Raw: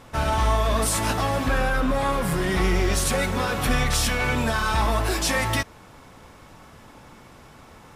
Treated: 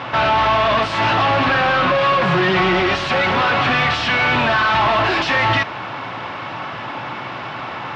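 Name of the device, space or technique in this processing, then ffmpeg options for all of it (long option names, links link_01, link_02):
overdrive pedal into a guitar cabinet: -filter_complex "[0:a]asettb=1/sr,asplit=3[link_01][link_02][link_03];[link_01]atrim=end=1.654[link_04];[link_02]atrim=start=1.65:end=2.8,asetpts=PTS-STARTPTS,afade=type=in:duration=0.004:curve=qsin,afade=type=out:start_time=1.146:duration=0.004:curve=qsin,aecho=1:1:5.5:0.78,atrim=end_sample=50715[link_05];[link_03]atrim=start=2.796[link_06];[link_04][link_05]acrossfade=duration=0.004:curve1=hsin:curve2=qsin[link_07];[link_07][link_06]acrossfade=duration=0.004:curve1=qsin:curve2=hsin,asplit=2[link_08][link_09];[link_09]highpass=frequency=720:poles=1,volume=32dB,asoftclip=type=tanh:threshold=-7.5dB[link_10];[link_08][link_10]amix=inputs=2:normalize=0,lowpass=frequency=1900:poles=1,volume=-6dB,highpass=93,equalizer=frequency=120:width_type=q:width=4:gain=9,equalizer=frequency=220:width_type=q:width=4:gain=-4,equalizer=frequency=460:width_type=q:width=4:gain=-8,equalizer=frequency=2800:width_type=q:width=4:gain=4,lowpass=frequency=4500:width=0.5412,lowpass=frequency=4500:width=1.3066"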